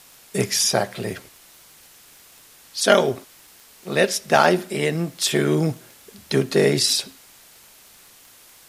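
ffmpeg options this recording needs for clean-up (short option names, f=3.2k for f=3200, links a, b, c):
-af "adeclick=t=4,afwtdn=0.004"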